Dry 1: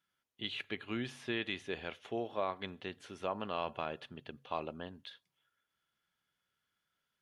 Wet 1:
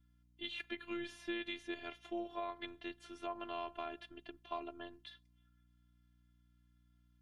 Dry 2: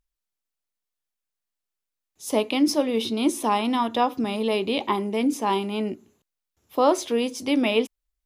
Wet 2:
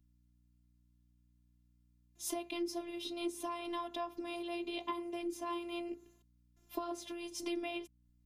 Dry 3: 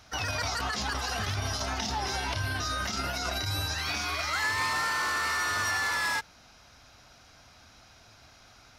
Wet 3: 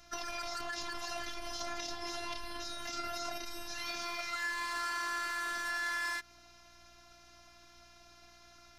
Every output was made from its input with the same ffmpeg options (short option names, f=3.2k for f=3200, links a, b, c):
-af "acompressor=threshold=-32dB:ratio=12,afftfilt=real='hypot(re,im)*cos(PI*b)':imag='0':win_size=512:overlap=0.75,aeval=exprs='val(0)+0.000355*(sin(2*PI*60*n/s)+sin(2*PI*2*60*n/s)/2+sin(2*PI*3*60*n/s)/3+sin(2*PI*4*60*n/s)/4+sin(2*PI*5*60*n/s)/5)':c=same"